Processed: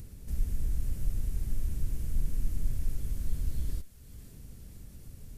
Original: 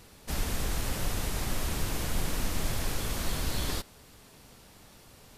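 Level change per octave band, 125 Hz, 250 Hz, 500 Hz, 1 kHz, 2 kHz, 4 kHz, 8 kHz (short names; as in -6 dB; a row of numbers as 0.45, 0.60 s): -0.5, -8.0, -16.5, -24.5, -21.5, -21.0, -14.5 dB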